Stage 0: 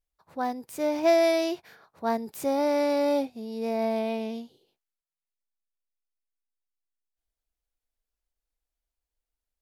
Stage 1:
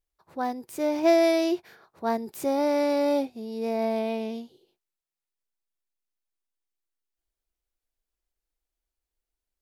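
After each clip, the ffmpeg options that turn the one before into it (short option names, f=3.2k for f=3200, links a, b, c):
-af "equalizer=f=360:w=5.1:g=8"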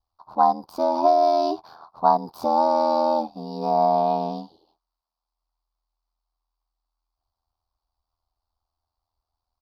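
-af "acompressor=threshold=-24dB:ratio=12,aeval=exprs='val(0)*sin(2*PI*41*n/s)':c=same,firequalizer=gain_entry='entry(210,0);entry(450,-5);entry(740,13);entry(1100,14);entry(1900,-19);entry(4600,7);entry(7200,-17);entry(13000,-10)':delay=0.05:min_phase=1,volume=5.5dB"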